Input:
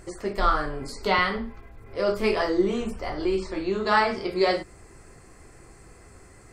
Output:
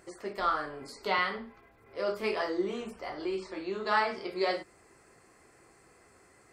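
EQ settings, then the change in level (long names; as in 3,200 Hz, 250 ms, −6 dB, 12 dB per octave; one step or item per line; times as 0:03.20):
high-pass filter 370 Hz 6 dB per octave
parametric band 7,600 Hz −3.5 dB 1.2 octaves
−5.5 dB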